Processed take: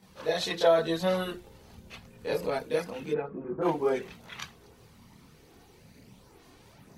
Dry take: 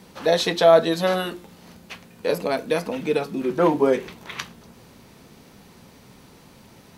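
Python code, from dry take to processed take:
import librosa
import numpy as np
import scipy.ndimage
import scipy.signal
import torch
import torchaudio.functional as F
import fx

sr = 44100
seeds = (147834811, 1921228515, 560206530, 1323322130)

y = fx.low_shelf(x, sr, hz=110.0, db=11.0, at=(0.83, 2.6))
y = fx.lowpass(y, sr, hz=fx.line((3.1, 2000.0), (3.61, 1200.0)), slope=24, at=(3.1, 3.61), fade=0.02)
y = fx.chorus_voices(y, sr, voices=4, hz=0.56, base_ms=26, depth_ms=1.4, mix_pct=65)
y = y * 10.0 ** (-5.0 / 20.0)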